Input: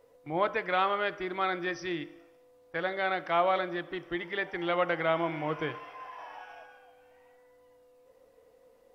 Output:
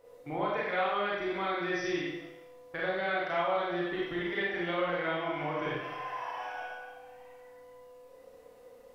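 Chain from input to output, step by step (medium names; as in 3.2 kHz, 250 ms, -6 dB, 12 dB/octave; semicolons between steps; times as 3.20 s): compression 3:1, threshold -37 dBFS, peak gain reduction 12 dB; Schroeder reverb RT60 0.85 s, combs from 31 ms, DRR -5.5 dB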